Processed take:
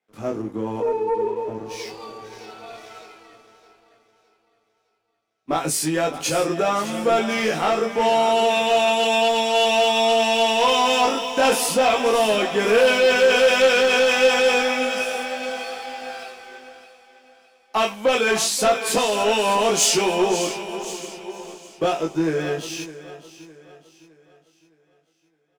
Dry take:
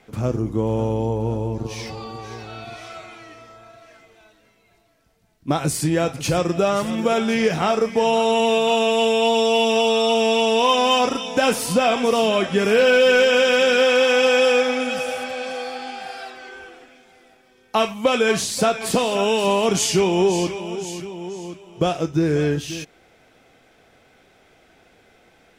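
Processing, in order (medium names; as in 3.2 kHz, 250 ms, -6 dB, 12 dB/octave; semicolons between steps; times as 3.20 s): 0.80–1.48 s: formants replaced by sine waves; high-pass 290 Hz 12 dB/octave; doubling 19 ms -2 dB; waveshaping leveller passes 2; on a send: feedback delay 611 ms, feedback 53%, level -11.5 dB; on the sum: three bands expanded up and down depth 40%; trim -7.5 dB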